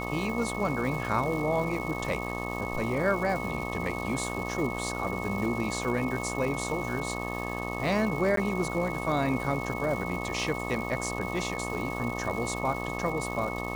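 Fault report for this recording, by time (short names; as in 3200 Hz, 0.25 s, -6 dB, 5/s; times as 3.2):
buzz 60 Hz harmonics 21 -35 dBFS
crackle 530/s -36 dBFS
tone 2200 Hz -37 dBFS
8.36–8.37 gap 13 ms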